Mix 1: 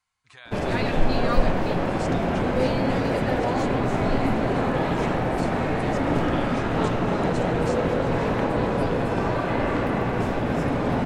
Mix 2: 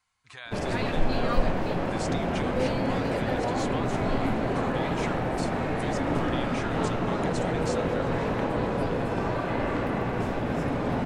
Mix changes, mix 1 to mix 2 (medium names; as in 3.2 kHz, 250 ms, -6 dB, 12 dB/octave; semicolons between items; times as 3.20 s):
speech +3.5 dB; background -4.0 dB